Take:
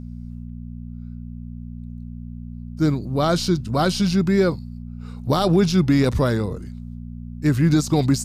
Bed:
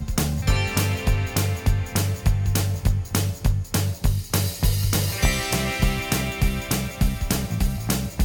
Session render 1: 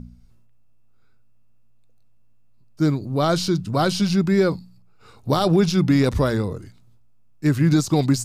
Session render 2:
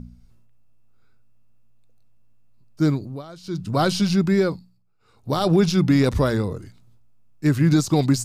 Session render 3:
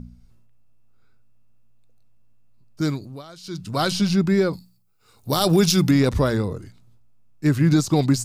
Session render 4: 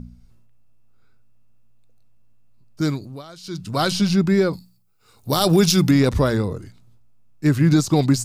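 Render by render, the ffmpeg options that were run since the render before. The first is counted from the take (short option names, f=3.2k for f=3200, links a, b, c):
-af "bandreject=f=60:t=h:w=4,bandreject=f=120:t=h:w=4,bandreject=f=180:t=h:w=4,bandreject=f=240:t=h:w=4"
-filter_complex "[0:a]asplit=5[a][b][c][d][e];[a]atrim=end=3.23,asetpts=PTS-STARTPTS,afade=t=out:st=2.97:d=0.26:silence=0.0891251[f];[b]atrim=start=3.23:end=3.43,asetpts=PTS-STARTPTS,volume=-21dB[g];[c]atrim=start=3.43:end=4.78,asetpts=PTS-STARTPTS,afade=t=in:d=0.26:silence=0.0891251,afade=t=out:st=0.88:d=0.47:silence=0.223872[h];[d]atrim=start=4.78:end=5.06,asetpts=PTS-STARTPTS,volume=-13dB[i];[e]atrim=start=5.06,asetpts=PTS-STARTPTS,afade=t=in:d=0.47:silence=0.223872[j];[f][g][h][i][j]concat=n=5:v=0:a=1"
-filter_complex "[0:a]asettb=1/sr,asplit=3[a][b][c];[a]atrim=end=2.814[d];[b]atrim=start=2.81:end=3.91,asetpts=PTS-STARTPTS,afade=t=in:d=0.004:c=qsin,afade=t=out:st=1.096:d=0.004:c=qsin,tiltshelf=f=1.4k:g=-4.5[e];[c]atrim=start=3.906[f];[d][e]acrossfade=d=0.004:c1=hsin:c2=qsin[g];[g][f]acrossfade=d=0.004:c1=qsin:c2=hsin,asettb=1/sr,asplit=3[h][i][j];[h]atrim=end=4.534[k];[i]atrim=start=4.53:end=5.91,asetpts=PTS-STARTPTS,afade=t=in:d=0.004:c=qsin,afade=t=out:st=1.376:d=0.004:c=qsin,aemphasis=mode=production:type=75kf[l];[j]atrim=start=5.906[m];[k][l]acrossfade=d=0.004:c1=hsin:c2=qsin[n];[n][m]acrossfade=d=0.004:c1=qsin:c2=hsin"
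-af "volume=1.5dB"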